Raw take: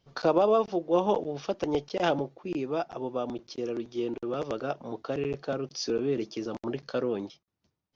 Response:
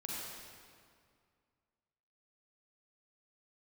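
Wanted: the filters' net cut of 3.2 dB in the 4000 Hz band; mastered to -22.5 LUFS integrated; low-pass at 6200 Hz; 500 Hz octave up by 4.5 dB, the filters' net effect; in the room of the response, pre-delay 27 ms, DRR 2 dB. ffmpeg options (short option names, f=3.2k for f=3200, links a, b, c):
-filter_complex "[0:a]lowpass=6.2k,equalizer=f=500:t=o:g=5.5,equalizer=f=4k:t=o:g=-3.5,asplit=2[a][b];[1:a]atrim=start_sample=2205,adelay=27[c];[b][c]afir=irnorm=-1:irlink=0,volume=-3dB[d];[a][d]amix=inputs=2:normalize=0,volume=2dB"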